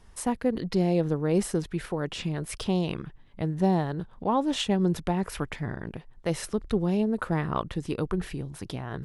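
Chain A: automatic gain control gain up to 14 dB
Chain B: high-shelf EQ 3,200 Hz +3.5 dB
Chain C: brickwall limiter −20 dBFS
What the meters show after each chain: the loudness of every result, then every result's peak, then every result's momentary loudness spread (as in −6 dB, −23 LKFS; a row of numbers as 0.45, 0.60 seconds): −18.0, −28.5, −32.0 LKFS; −1.5, −11.0, −20.0 dBFS; 9, 10, 8 LU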